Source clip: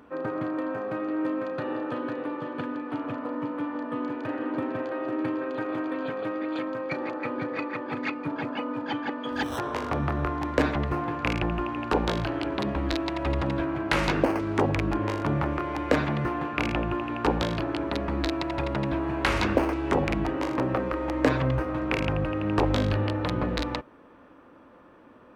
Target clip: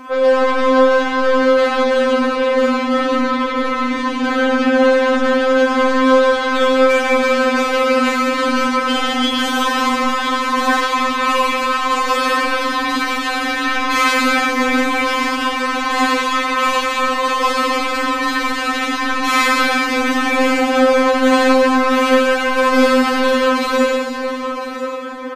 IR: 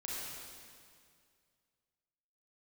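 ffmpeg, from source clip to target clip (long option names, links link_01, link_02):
-filter_complex "[0:a]bass=frequency=250:gain=-2,treble=frequency=4000:gain=4,asplit=2[link_01][link_02];[link_02]highpass=frequency=720:poles=1,volume=35dB,asoftclip=type=tanh:threshold=-6.5dB[link_03];[link_01][link_03]amix=inputs=2:normalize=0,lowpass=frequency=4300:poles=1,volume=-6dB,acrossover=split=480|710[link_04][link_05][link_06];[link_05]acompressor=threshold=-32dB:ratio=6[link_07];[link_04][link_07][link_06]amix=inputs=3:normalize=0,aecho=1:1:1000:0.266[link_08];[1:a]atrim=start_sample=2205[link_09];[link_08][link_09]afir=irnorm=-1:irlink=0,aresample=32000,aresample=44100,afftfilt=real='re*3.46*eq(mod(b,12),0)':imag='im*3.46*eq(mod(b,12),0)':win_size=2048:overlap=0.75,volume=1.5dB"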